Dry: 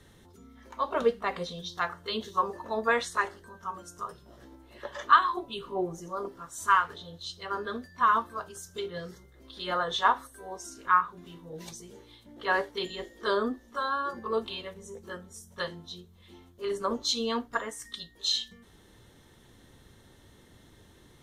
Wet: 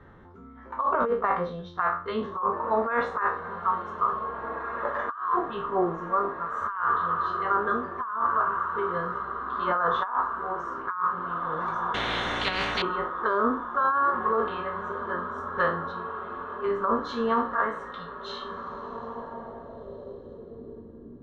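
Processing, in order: spectral trails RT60 0.38 s; 8.43–8.89 running mean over 9 samples; 15.38–15.92 sample leveller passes 1; diffused feedback echo 1.85 s, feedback 59%, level -13.5 dB; low-pass sweep 1300 Hz -> 290 Hz, 18.56–21.19; negative-ratio compressor -25 dBFS, ratio -1; 11.94–12.82 spectral compressor 10:1

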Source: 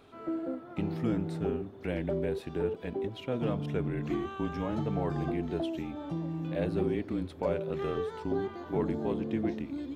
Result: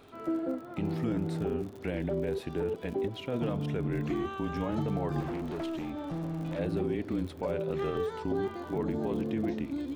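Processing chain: limiter -25 dBFS, peak gain reduction 7.5 dB; 5.2–6.59 overloaded stage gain 34.5 dB; crackle 51/s -44 dBFS; gain +2.5 dB

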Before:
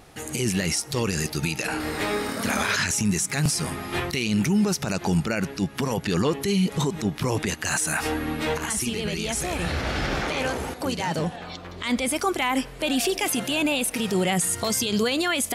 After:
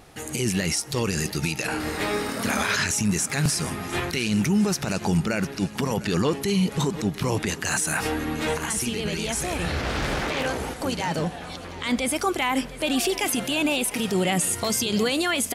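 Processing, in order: feedback echo 0.705 s, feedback 60%, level -17 dB; 9.82–10.46 Doppler distortion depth 0.51 ms

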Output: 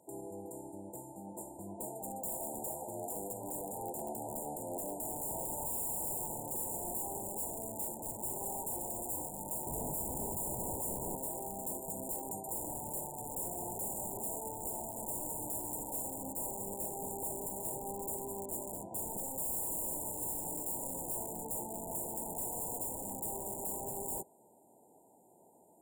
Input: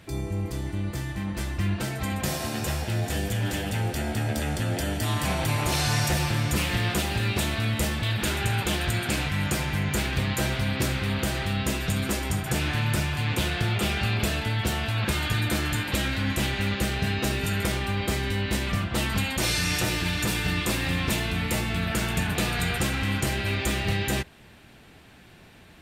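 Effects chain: HPF 420 Hz 12 dB/oct, from 9.67 s 60 Hz, from 11.15 s 400 Hz; wrapped overs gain 25.5 dB; brick-wall FIR band-stop 1000–6900 Hz; gain -4.5 dB

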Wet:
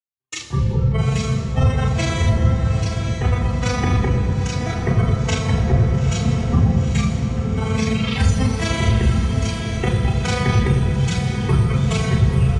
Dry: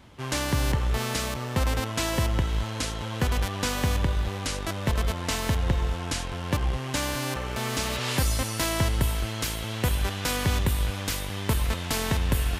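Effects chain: octaver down 2 oct, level +2 dB; AM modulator 24 Hz, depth 55%; spectral noise reduction 22 dB; gate -41 dBFS, range -47 dB; reverb RT60 3.3 s, pre-delay 3 ms, DRR -3 dB; downsampling 22050 Hz; 6.24–8.52 bell 230 Hz +9 dB 1.1 oct; diffused feedback echo 0.89 s, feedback 53%, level -6.5 dB; gain -2 dB

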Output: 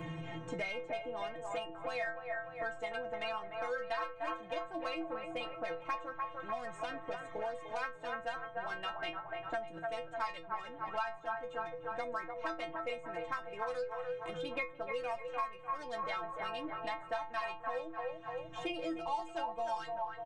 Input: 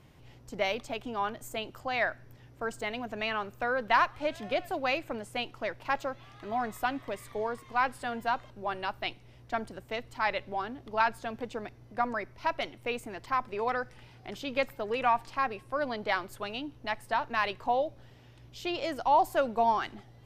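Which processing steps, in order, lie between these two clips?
Wiener smoothing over 9 samples; downsampling 22050 Hz; metallic resonator 160 Hz, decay 0.37 s, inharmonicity 0.008; on a send: band-limited delay 0.297 s, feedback 42%, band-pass 890 Hz, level -4.5 dB; on the sum: three-band squash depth 100%; gain +4 dB

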